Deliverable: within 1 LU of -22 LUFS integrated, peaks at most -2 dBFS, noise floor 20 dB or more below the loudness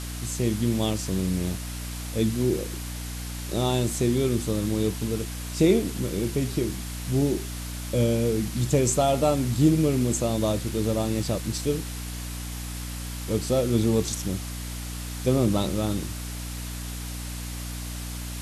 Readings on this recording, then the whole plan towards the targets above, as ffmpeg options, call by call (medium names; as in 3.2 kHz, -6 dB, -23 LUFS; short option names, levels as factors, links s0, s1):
hum 60 Hz; highest harmonic 300 Hz; hum level -32 dBFS; noise floor -34 dBFS; noise floor target -47 dBFS; loudness -26.5 LUFS; peak level -8.5 dBFS; loudness target -22.0 LUFS
-> -af "bandreject=f=60:t=h:w=4,bandreject=f=120:t=h:w=4,bandreject=f=180:t=h:w=4,bandreject=f=240:t=h:w=4,bandreject=f=300:t=h:w=4"
-af "afftdn=nr=13:nf=-34"
-af "volume=1.68"